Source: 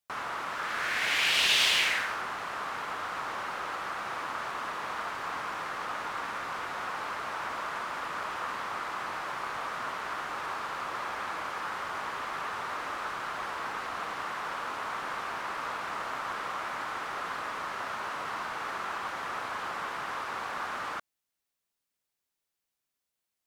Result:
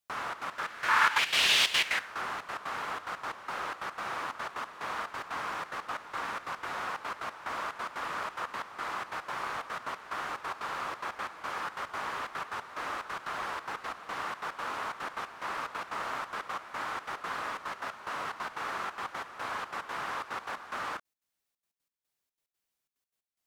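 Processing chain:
sound drawn into the spectrogram noise, 0:00.88–0:01.19, 830–1,800 Hz −24 dBFS
gate pattern "xxxx.x.x..xxx.x." 181 BPM −12 dB

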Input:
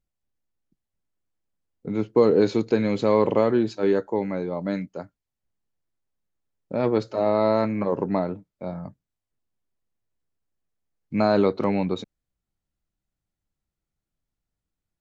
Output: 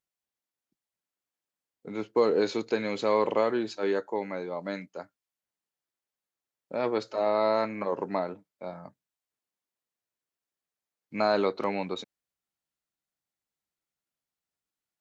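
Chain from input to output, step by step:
high-pass filter 750 Hz 6 dB per octave

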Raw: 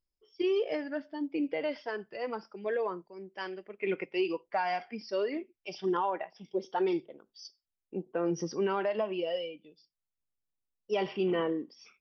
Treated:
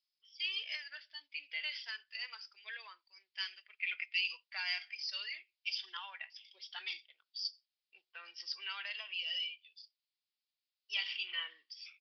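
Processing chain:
flat-topped band-pass 3,800 Hz, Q 0.77
first difference
downsampling to 11,025 Hz
level +15 dB

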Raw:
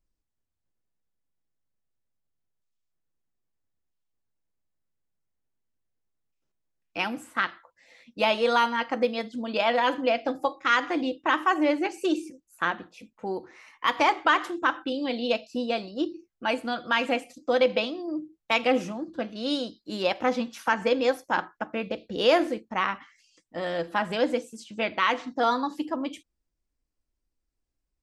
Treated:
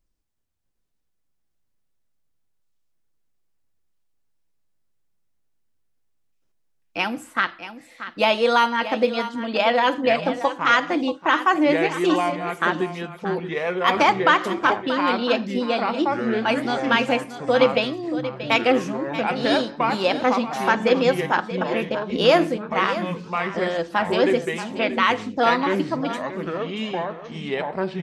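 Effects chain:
delay with pitch and tempo change per echo 757 ms, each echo −5 semitones, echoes 2, each echo −6 dB
on a send: single-tap delay 632 ms −12.5 dB
on the sum: level +4.5 dB

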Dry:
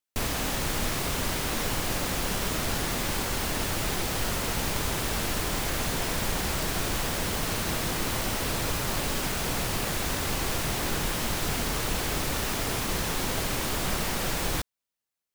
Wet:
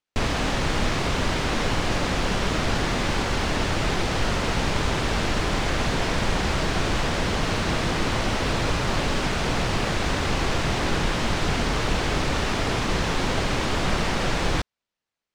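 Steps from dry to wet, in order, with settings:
high-frequency loss of the air 110 metres
level +6.5 dB

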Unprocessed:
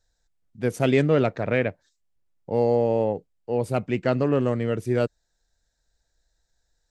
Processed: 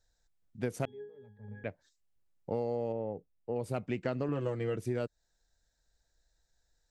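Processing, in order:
0:04.28–0:04.77: comb filter 6.1 ms, depth 64%
downward compressor 6 to 1, threshold −27 dBFS, peak gain reduction 12 dB
0:00.85–0:01.64: resonances in every octave G#, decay 0.49 s
0:02.92–0:03.56: head-to-tape spacing loss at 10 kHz 36 dB
level −3 dB

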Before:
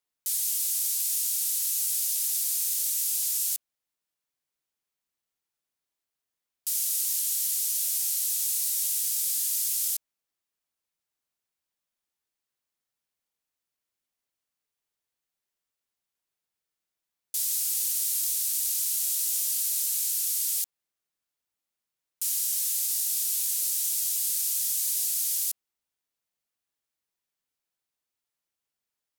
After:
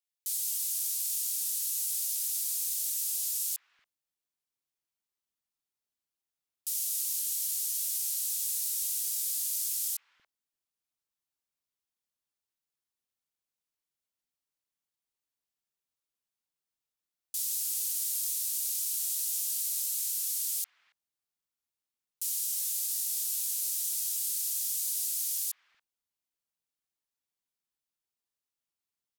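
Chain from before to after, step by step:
three-band delay without the direct sound highs, lows, mids 230/280 ms, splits 560/1,800 Hz
level −4.5 dB

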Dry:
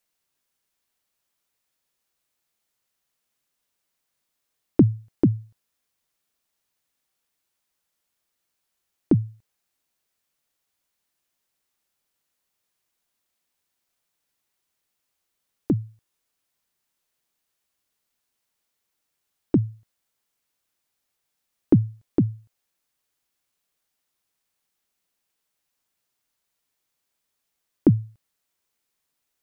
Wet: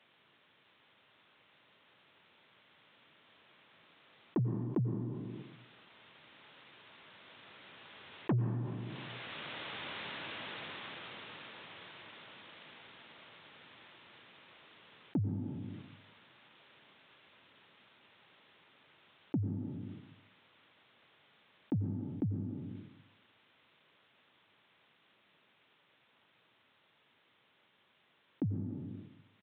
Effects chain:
source passing by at 0:09.94, 31 m/s, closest 13 metres
high-pass filter 100 Hz 24 dB per octave
notch filter 730 Hz, Q 17
soft clipping −34 dBFS, distortion −7 dB
on a send at −18 dB: convolution reverb RT60 0.90 s, pre-delay 83 ms
on the sum: downsampling to 8,000 Hz
envelope flattener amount 70%
level +7 dB

